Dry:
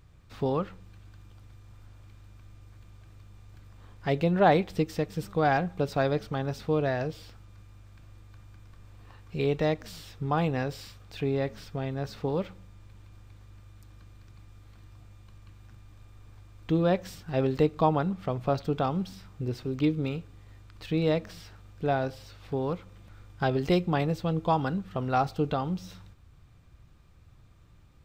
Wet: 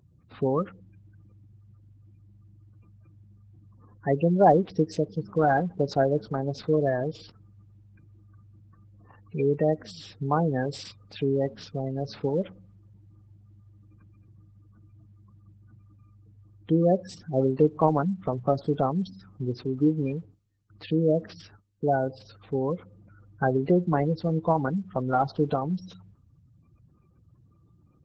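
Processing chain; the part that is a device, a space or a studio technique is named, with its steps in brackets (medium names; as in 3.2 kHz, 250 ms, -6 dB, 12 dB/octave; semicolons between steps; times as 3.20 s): 20.00–21.97 s: gate with hold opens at -39 dBFS; noise-suppressed video call (high-pass 120 Hz 12 dB/octave; spectral gate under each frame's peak -15 dB strong; trim +3.5 dB; Opus 12 kbps 48 kHz)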